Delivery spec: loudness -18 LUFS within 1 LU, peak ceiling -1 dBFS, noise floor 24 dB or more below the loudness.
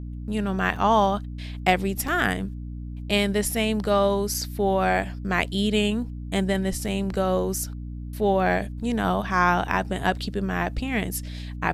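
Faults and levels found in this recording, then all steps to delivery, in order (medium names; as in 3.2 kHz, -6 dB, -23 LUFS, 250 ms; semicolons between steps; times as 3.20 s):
dropouts 4; longest dropout 4.2 ms; hum 60 Hz; highest harmonic 300 Hz; hum level -32 dBFS; loudness -24.5 LUFS; peak level -6.0 dBFS; loudness target -18.0 LUFS
-> interpolate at 0.76/2.08/4.34/6.88 s, 4.2 ms; de-hum 60 Hz, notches 5; trim +6.5 dB; peak limiter -1 dBFS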